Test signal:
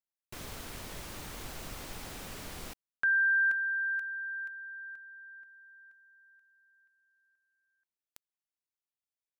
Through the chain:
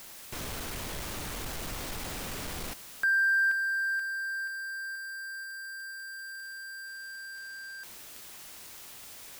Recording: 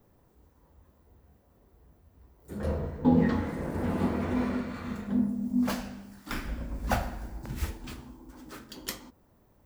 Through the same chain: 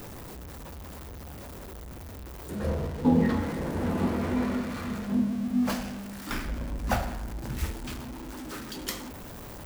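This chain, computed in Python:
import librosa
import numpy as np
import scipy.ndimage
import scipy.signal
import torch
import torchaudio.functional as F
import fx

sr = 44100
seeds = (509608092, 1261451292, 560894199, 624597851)

y = x + 0.5 * 10.0 ** (-36.5 / 20.0) * np.sign(x)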